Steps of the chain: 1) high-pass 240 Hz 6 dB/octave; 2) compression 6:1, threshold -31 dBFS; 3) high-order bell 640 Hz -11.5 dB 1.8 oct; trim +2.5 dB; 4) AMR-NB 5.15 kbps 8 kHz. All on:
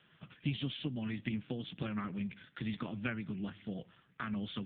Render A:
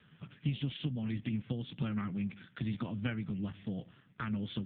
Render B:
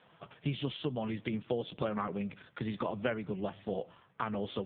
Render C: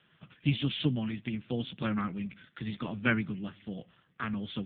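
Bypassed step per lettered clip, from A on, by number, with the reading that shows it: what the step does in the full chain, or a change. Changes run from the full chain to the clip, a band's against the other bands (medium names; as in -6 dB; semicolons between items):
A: 1, crest factor change -1.5 dB; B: 3, loudness change +3.0 LU; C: 2, mean gain reduction 3.5 dB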